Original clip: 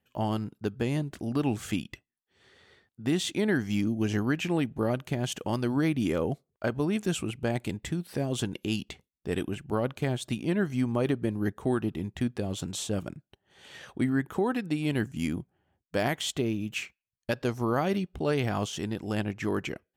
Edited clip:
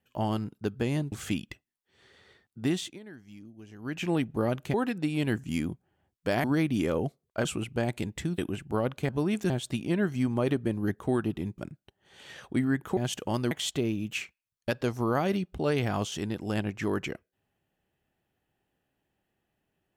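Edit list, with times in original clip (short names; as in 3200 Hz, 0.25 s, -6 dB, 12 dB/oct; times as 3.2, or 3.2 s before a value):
1.12–1.54 cut
3.09–4.52 dip -20.5 dB, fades 0.32 s linear
5.16–5.7 swap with 14.42–16.12
6.71–7.12 move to 10.08
8.05–9.37 cut
12.16–13.03 cut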